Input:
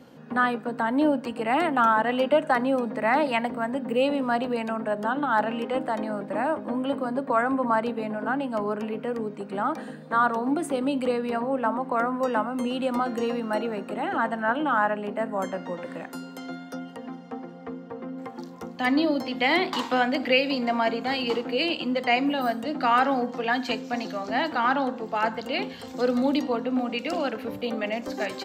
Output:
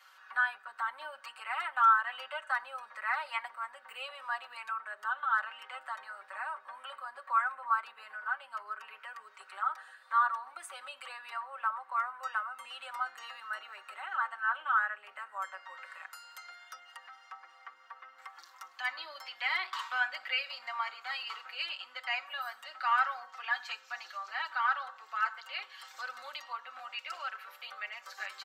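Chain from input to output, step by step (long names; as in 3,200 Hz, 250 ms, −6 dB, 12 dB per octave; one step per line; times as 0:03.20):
four-pole ladder high-pass 1,100 Hz, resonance 55%
comb filter 5.3 ms, depth 82%
one half of a high-frequency compander encoder only
level −2.5 dB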